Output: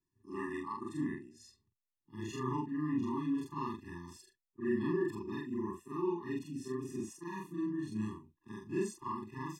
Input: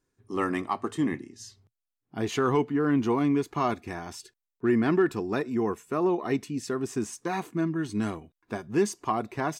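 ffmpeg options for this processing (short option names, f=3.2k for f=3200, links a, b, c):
-af "afftfilt=real='re':imag='-im':win_size=4096:overlap=0.75,afftfilt=real='re*eq(mod(floor(b*sr/1024/410),2),0)':imag='im*eq(mod(floor(b*sr/1024/410),2),0)':win_size=1024:overlap=0.75,volume=-4.5dB"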